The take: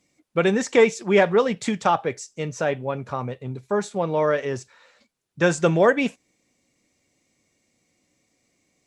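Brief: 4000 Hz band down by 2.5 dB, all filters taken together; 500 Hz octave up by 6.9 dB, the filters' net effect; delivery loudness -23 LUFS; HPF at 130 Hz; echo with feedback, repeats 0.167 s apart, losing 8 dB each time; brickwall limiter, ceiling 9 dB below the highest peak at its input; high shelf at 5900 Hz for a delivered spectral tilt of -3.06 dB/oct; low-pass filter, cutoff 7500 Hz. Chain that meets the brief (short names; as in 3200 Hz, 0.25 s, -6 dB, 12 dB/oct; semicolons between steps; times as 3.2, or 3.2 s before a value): HPF 130 Hz; LPF 7500 Hz; bell 500 Hz +8 dB; bell 4000 Hz -4.5 dB; high shelf 5900 Hz +4 dB; limiter -8 dBFS; feedback echo 0.167 s, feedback 40%, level -8 dB; gain -3.5 dB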